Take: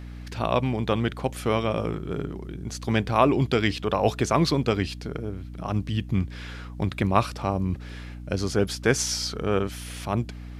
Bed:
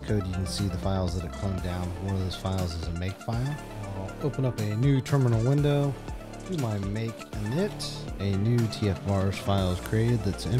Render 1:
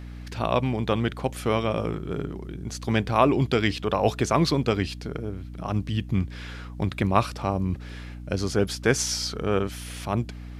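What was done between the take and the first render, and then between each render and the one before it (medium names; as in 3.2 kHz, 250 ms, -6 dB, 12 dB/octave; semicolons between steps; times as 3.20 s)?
no audible change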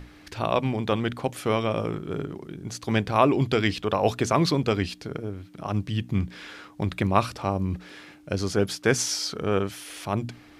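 hum notches 60/120/180/240 Hz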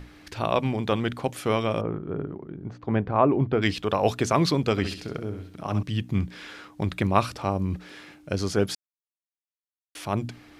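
1.81–3.62 s: low-pass 1.3 kHz; 4.71–5.83 s: flutter echo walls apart 11.3 m, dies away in 0.46 s; 8.75–9.95 s: mute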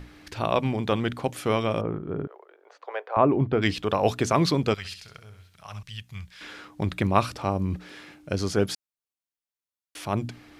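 2.27–3.17 s: steep high-pass 470 Hz 48 dB/octave; 4.74–6.41 s: amplifier tone stack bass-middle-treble 10-0-10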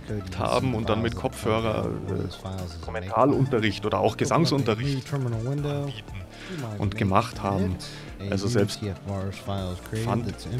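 add bed -4.5 dB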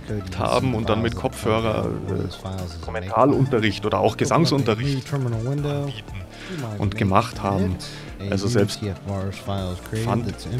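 trim +3.5 dB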